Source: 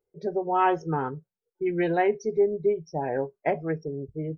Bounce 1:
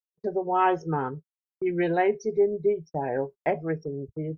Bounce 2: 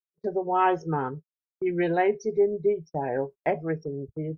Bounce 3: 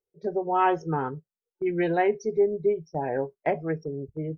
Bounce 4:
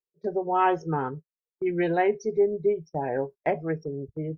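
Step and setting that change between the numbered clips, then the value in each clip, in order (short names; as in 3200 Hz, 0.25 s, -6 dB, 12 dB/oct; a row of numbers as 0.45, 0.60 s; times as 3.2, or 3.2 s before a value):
gate, range: -52, -39, -9, -22 dB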